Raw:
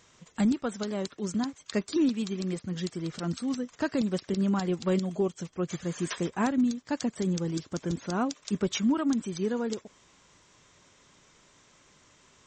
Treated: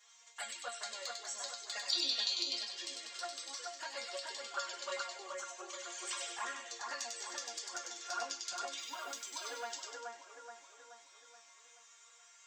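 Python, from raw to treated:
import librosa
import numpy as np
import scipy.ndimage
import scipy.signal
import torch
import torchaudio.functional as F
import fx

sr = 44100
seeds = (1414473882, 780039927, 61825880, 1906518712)

y = fx.block_float(x, sr, bits=7, at=(8.77, 9.55))
y = scipy.signal.sosfilt(scipy.signal.butter(4, 630.0, 'highpass', fs=sr, output='sos'), y)
y = fx.high_shelf(y, sr, hz=2100.0, db=8.0)
y = fx.over_compress(y, sr, threshold_db=-29.0, ratio=-0.5)
y = fx.lowpass_res(y, sr, hz=4700.0, q=12.0, at=(1.88, 2.6), fade=0.02)
y = fx.resonator_bank(y, sr, root=58, chord='minor', decay_s=0.29)
y = fx.env_flanger(y, sr, rest_ms=5.0, full_db=-42.0)
y = fx.echo_split(y, sr, split_hz=2100.0, low_ms=427, high_ms=98, feedback_pct=52, wet_db=-3)
y = y * 10.0 ** (12.0 / 20.0)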